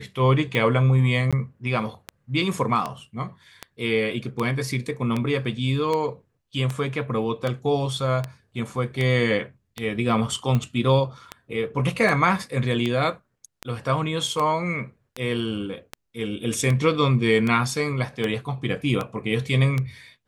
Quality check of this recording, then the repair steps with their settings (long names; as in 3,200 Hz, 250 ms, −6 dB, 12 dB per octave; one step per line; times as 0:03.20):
scratch tick 78 rpm −13 dBFS
0:01.31–0:01.33: drop-out 16 ms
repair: click removal
repair the gap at 0:01.31, 16 ms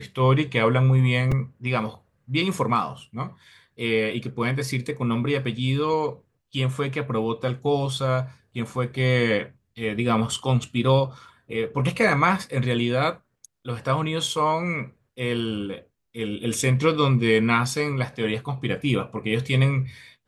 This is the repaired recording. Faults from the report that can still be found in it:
none of them is left